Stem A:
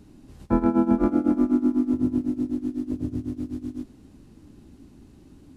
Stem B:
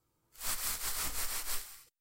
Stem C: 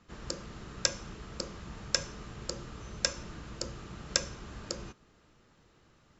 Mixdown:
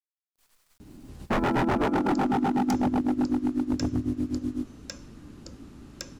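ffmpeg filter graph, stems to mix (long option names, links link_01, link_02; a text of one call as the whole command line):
ffmpeg -i stem1.wav -i stem2.wav -i stem3.wav -filter_complex "[0:a]adelay=800,volume=2.5dB[link_01];[1:a]acrossover=split=120|6200[link_02][link_03][link_04];[link_02]acompressor=threshold=-46dB:ratio=4[link_05];[link_03]acompressor=threshold=-45dB:ratio=4[link_06];[link_04]acompressor=threshold=-47dB:ratio=4[link_07];[link_05][link_06][link_07]amix=inputs=3:normalize=0,acrusher=bits=5:dc=4:mix=0:aa=0.000001,volume=-19.5dB[link_08];[2:a]adelay=1850,volume=-10.5dB[link_09];[link_01][link_08][link_09]amix=inputs=3:normalize=0,aeval=exprs='0.119*(abs(mod(val(0)/0.119+3,4)-2)-1)':channel_layout=same" out.wav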